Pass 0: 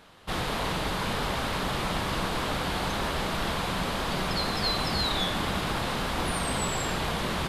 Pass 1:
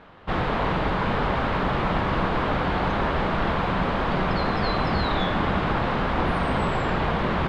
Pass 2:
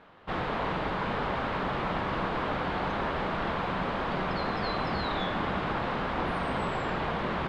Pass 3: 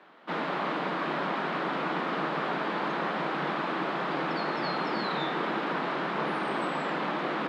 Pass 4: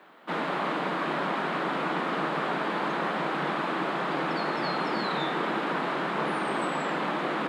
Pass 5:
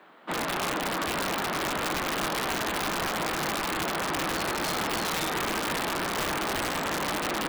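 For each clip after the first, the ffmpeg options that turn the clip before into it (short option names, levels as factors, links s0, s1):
-af "lowpass=2000,volume=2.11"
-af "lowshelf=f=130:g=-7.5,volume=0.531"
-af "afreqshift=140"
-af "aexciter=amount=2.3:drive=7.1:freq=7200,volume=1.19"
-af "aeval=exprs='(mod(12.6*val(0)+1,2)-1)/12.6':c=same"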